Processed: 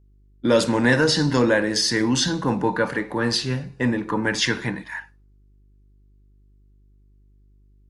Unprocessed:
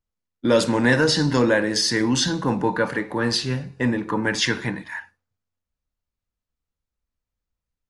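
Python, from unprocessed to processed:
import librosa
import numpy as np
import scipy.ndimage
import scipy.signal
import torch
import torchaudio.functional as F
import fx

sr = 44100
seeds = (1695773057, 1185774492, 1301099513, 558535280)

y = fx.dmg_buzz(x, sr, base_hz=50.0, harmonics=8, level_db=-55.0, tilt_db=-9, odd_only=False)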